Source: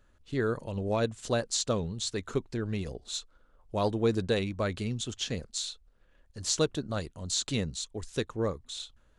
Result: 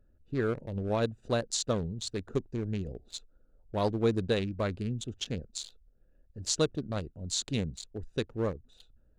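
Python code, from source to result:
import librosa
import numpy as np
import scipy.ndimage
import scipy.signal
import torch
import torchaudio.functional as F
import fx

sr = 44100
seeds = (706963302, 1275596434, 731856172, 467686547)

y = fx.wiener(x, sr, points=41)
y = fx.peak_eq(y, sr, hz=6400.0, db=9.5, octaves=0.45, at=(2.34, 2.88))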